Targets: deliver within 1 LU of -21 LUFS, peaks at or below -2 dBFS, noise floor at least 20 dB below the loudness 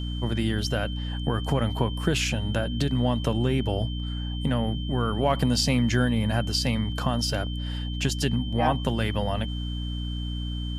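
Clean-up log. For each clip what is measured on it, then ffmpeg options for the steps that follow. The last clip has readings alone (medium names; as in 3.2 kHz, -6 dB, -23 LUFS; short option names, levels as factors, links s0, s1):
hum 60 Hz; highest harmonic 300 Hz; hum level -28 dBFS; steady tone 3.1 kHz; tone level -39 dBFS; loudness -26.5 LUFS; peak level -9.0 dBFS; loudness target -21.0 LUFS
-> -af "bandreject=f=60:t=h:w=4,bandreject=f=120:t=h:w=4,bandreject=f=180:t=h:w=4,bandreject=f=240:t=h:w=4,bandreject=f=300:t=h:w=4"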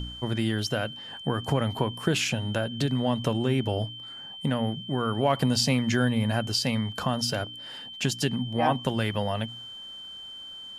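hum not found; steady tone 3.1 kHz; tone level -39 dBFS
-> -af "bandreject=f=3100:w=30"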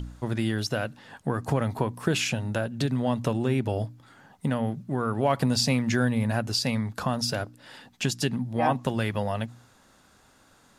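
steady tone not found; loudness -27.5 LUFS; peak level -9.5 dBFS; loudness target -21.0 LUFS
-> -af "volume=2.11"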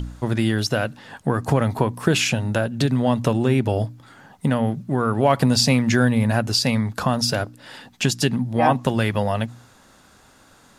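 loudness -21.0 LUFS; peak level -3.0 dBFS; noise floor -53 dBFS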